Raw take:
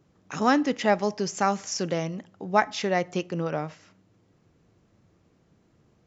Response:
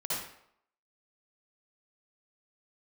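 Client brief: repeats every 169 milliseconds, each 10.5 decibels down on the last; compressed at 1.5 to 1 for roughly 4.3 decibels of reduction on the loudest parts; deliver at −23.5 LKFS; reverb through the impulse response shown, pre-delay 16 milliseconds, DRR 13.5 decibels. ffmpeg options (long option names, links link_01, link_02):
-filter_complex "[0:a]acompressor=threshold=-27dB:ratio=1.5,aecho=1:1:169|338|507:0.299|0.0896|0.0269,asplit=2[link_01][link_02];[1:a]atrim=start_sample=2205,adelay=16[link_03];[link_02][link_03]afir=irnorm=-1:irlink=0,volume=-19dB[link_04];[link_01][link_04]amix=inputs=2:normalize=0,volume=5.5dB"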